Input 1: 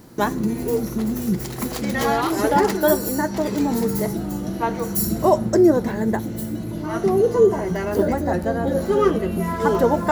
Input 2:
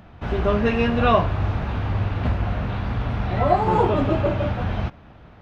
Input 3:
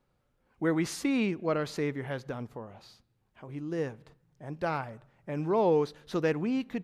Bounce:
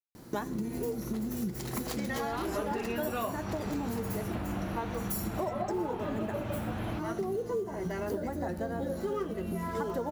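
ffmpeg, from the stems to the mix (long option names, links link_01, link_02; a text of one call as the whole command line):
ffmpeg -i stem1.wav -i stem2.wav -filter_complex "[0:a]acrusher=bits=8:mode=log:mix=0:aa=0.000001,adelay=150,volume=-4.5dB[link_01];[1:a]acrossover=split=150[link_02][link_03];[link_02]acompressor=threshold=-32dB:ratio=6[link_04];[link_04][link_03]amix=inputs=2:normalize=0,adelay=2100,volume=-3dB[link_05];[link_01][link_05]amix=inputs=2:normalize=0,acompressor=threshold=-31dB:ratio=6" out.wav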